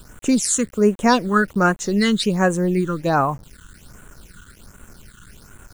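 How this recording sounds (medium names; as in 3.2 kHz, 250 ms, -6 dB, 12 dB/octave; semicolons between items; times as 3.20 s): a quantiser's noise floor 8-bit, dither none; phasing stages 8, 1.3 Hz, lowest notch 660–4900 Hz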